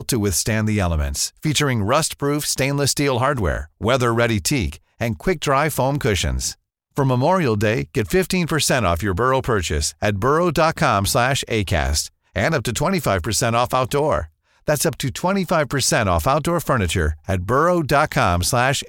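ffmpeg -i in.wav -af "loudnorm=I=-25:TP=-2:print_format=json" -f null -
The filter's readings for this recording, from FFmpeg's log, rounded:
"input_i" : "-19.4",
"input_tp" : "-4.2",
"input_lra" : "1.4",
"input_thresh" : "-29.5",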